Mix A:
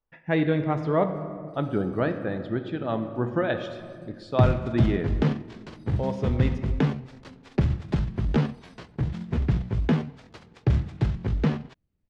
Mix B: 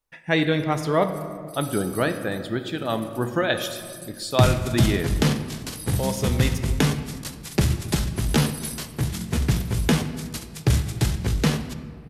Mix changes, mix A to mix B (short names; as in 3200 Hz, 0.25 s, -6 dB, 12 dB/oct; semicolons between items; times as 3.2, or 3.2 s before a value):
first sound +4.0 dB; second sound: send on; master: remove tape spacing loss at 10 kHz 36 dB